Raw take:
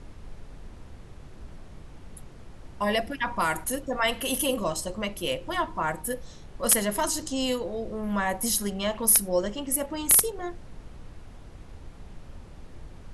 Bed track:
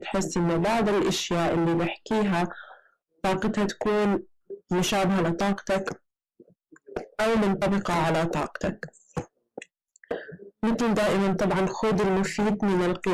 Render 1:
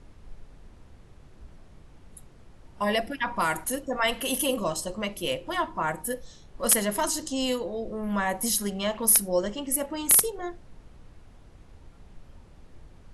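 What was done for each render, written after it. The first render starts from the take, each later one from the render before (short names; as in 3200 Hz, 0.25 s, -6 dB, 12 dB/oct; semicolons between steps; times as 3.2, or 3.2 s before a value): noise print and reduce 6 dB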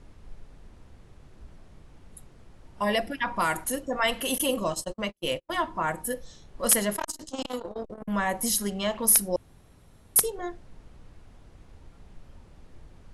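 4.38–5.64 gate -34 dBFS, range -44 dB; 6.93–8.08 core saturation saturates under 990 Hz; 9.36–10.16 room tone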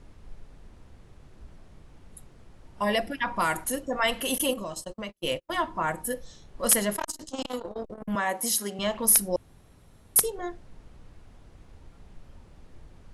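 4.53–5.18 compressor 3:1, threshold -33 dBFS; 8.15–8.79 HPF 270 Hz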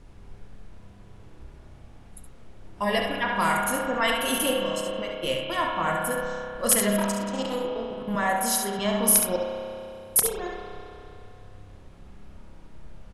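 on a send: echo 70 ms -6.5 dB; on the sum: spring tank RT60 2.8 s, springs 30 ms, chirp 40 ms, DRR 0.5 dB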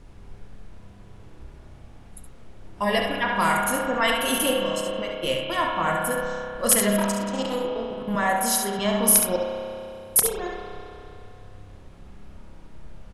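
gain +2 dB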